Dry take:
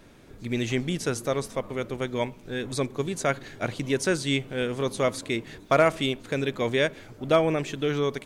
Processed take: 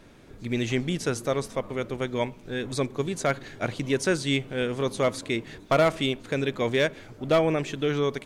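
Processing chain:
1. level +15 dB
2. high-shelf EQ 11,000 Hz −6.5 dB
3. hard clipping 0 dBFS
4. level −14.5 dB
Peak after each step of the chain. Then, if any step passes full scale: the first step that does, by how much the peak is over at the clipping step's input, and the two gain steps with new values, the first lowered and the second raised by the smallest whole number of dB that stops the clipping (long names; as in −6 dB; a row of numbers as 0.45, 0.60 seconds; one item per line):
+6.0, +6.0, 0.0, −14.5 dBFS
step 1, 6.0 dB
step 1 +9 dB, step 4 −8.5 dB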